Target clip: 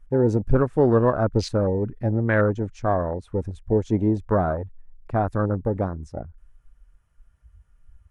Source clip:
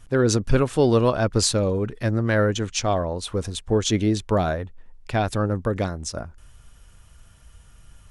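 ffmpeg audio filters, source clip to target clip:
-af "afwtdn=0.0501,highshelf=f=2.5k:t=q:w=1.5:g=-7"

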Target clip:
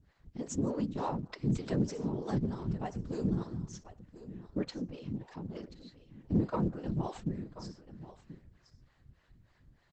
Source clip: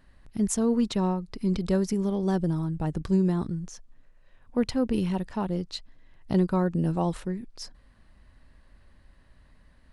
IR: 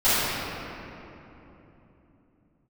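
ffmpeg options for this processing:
-filter_complex "[0:a]asettb=1/sr,asplit=3[a][b][c];[a]atrim=end=3.154[d];[b]atrim=start=3.15:end=3.66,asetpts=PTS-STARTPTS,afade=t=in:d=0.004:c=qsin,afade=t=out:st=0.506:d=0.004:c=qsin,equalizer=f=5.8k:w=1.8:g=7.5[e];[c]atrim=start=3.656[f];[d][e]acrossfade=d=0.004:c1=hsin:c2=qsin[g];[g][f]acrossfade=d=0.004:c1=qsin:c2=hsin,asplit=2[h][i];[1:a]atrim=start_sample=2205,afade=t=out:st=0.19:d=0.01,atrim=end_sample=8820,adelay=15[j];[i][j]afir=irnorm=-1:irlink=0,volume=-31dB[k];[h][k]amix=inputs=2:normalize=0,asplit=3[l][m][n];[l]afade=t=out:st=1.13:d=0.02[o];[m]adynamicequalizer=threshold=0.00447:dfrequency=1300:dqfactor=0.74:tfrequency=1300:tqfactor=0.74:attack=5:release=100:ratio=0.375:range=3:mode=boostabove:tftype=bell,afade=t=in:st=1.13:d=0.02,afade=t=out:st=1.71:d=0.02[p];[n]afade=t=in:st=1.71:d=0.02[q];[o][p][q]amix=inputs=3:normalize=0,asplit=3[r][s][t];[r]afade=t=out:st=4.63:d=0.02[u];[s]acompressor=threshold=-36dB:ratio=2,afade=t=in:st=4.63:d=0.02,afade=t=out:st=5.54:d=0.02[v];[t]afade=t=in:st=5.54:d=0.02[w];[u][v][w]amix=inputs=3:normalize=0,afftfilt=real='hypot(re,im)*cos(2*PI*random(0))':imag='hypot(re,im)*sin(2*PI*random(1))':win_size=512:overlap=0.75,acrossover=split=410[x][y];[x]aeval=exprs='val(0)*(1-1/2+1/2*cos(2*PI*3.3*n/s))':c=same[z];[y]aeval=exprs='val(0)*(1-1/2-1/2*cos(2*PI*3.3*n/s))':c=same[aa];[z][aa]amix=inputs=2:normalize=0,aecho=1:1:1034:0.178,asoftclip=type=tanh:threshold=-21dB,aresample=22050,aresample=44100,volume=4dB" -ar 48000 -c:a libopus -b:a 12k

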